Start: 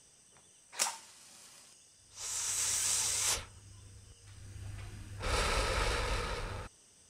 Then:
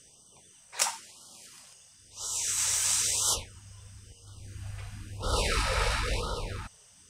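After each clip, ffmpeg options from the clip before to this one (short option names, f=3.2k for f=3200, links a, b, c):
-af "afftfilt=real='re*(1-between(b*sr/1024,270*pow(2100/270,0.5+0.5*sin(2*PI*0.99*pts/sr))/1.41,270*pow(2100/270,0.5+0.5*sin(2*PI*0.99*pts/sr))*1.41))':imag='im*(1-between(b*sr/1024,270*pow(2100/270,0.5+0.5*sin(2*PI*0.99*pts/sr))/1.41,270*pow(2100/270,0.5+0.5*sin(2*PI*0.99*pts/sr))*1.41))':win_size=1024:overlap=0.75,volume=5dB"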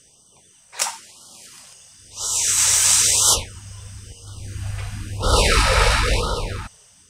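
-af "dynaudnorm=f=320:g=7:m=8.5dB,volume=3.5dB"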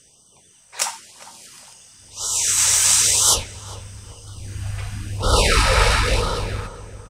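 -filter_complex "[0:a]asplit=2[a][b];[b]adelay=406,lowpass=f=1.4k:p=1,volume=-12.5dB,asplit=2[c][d];[d]adelay=406,lowpass=f=1.4k:p=1,volume=0.38,asplit=2[e][f];[f]adelay=406,lowpass=f=1.4k:p=1,volume=0.38,asplit=2[g][h];[h]adelay=406,lowpass=f=1.4k:p=1,volume=0.38[i];[a][c][e][g][i]amix=inputs=5:normalize=0"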